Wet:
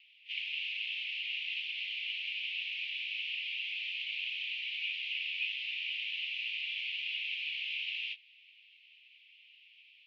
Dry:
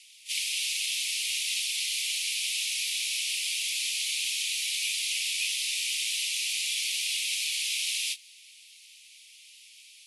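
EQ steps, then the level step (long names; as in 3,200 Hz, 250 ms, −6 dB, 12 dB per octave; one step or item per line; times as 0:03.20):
transistor ladder low-pass 3,200 Hz, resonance 60%
high-frequency loss of the air 130 metres
high-shelf EQ 2,100 Hz −12 dB
+8.5 dB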